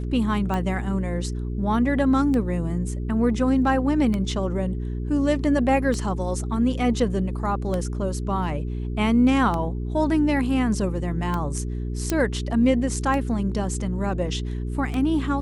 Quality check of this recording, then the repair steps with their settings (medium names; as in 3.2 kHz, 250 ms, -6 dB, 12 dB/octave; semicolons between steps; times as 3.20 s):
hum 60 Hz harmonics 7 -28 dBFS
tick 33 1/3 rpm -15 dBFS
12.10 s: pop -8 dBFS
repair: de-click; de-hum 60 Hz, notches 7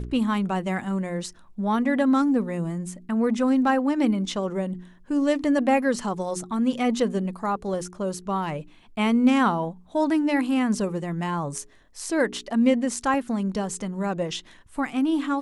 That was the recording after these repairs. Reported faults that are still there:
nothing left